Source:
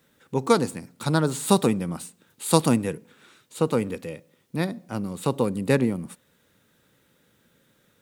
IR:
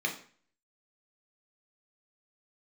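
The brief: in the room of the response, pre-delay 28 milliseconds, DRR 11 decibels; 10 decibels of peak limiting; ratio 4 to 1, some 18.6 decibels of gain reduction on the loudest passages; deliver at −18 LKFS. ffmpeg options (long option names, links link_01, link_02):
-filter_complex "[0:a]acompressor=threshold=-36dB:ratio=4,alimiter=level_in=5.5dB:limit=-24dB:level=0:latency=1,volume=-5.5dB,asplit=2[link_01][link_02];[1:a]atrim=start_sample=2205,adelay=28[link_03];[link_02][link_03]afir=irnorm=-1:irlink=0,volume=-18dB[link_04];[link_01][link_04]amix=inputs=2:normalize=0,volume=23.5dB"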